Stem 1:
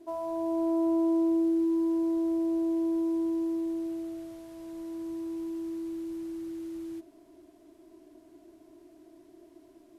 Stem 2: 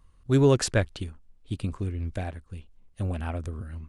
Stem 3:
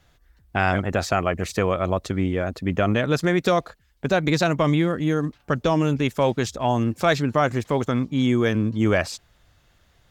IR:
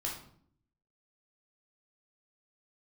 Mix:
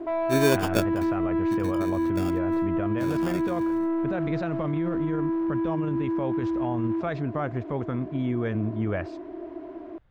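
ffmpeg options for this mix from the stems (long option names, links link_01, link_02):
-filter_complex "[0:a]asplit=2[link_01][link_02];[link_02]highpass=frequency=720:poles=1,volume=30dB,asoftclip=type=tanh:threshold=-19.5dB[link_03];[link_01][link_03]amix=inputs=2:normalize=0,lowpass=frequency=1200:poles=1,volume=-6dB,volume=0.5dB[link_04];[1:a]highpass=180,acrusher=samples=22:mix=1:aa=0.000001,volume=-1dB[link_05];[2:a]lowshelf=frequency=140:gain=6.5,volume=-7.5dB[link_06];[link_04][link_06]amix=inputs=2:normalize=0,lowpass=2000,alimiter=limit=-19.5dB:level=0:latency=1:release=25,volume=0dB[link_07];[link_05][link_07]amix=inputs=2:normalize=0"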